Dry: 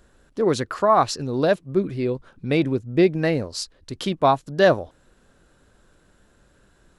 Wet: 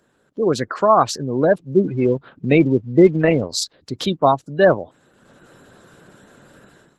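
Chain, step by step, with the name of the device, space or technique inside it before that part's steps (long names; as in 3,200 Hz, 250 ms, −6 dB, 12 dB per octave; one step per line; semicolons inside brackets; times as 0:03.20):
0:03.50–0:04.18: dynamic equaliser 3,900 Hz, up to +7 dB, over −50 dBFS, Q 5.5
noise-suppressed video call (high-pass filter 110 Hz 24 dB per octave; gate on every frequency bin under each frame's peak −25 dB strong; automatic gain control gain up to 15 dB; level −1 dB; Opus 16 kbit/s 48,000 Hz)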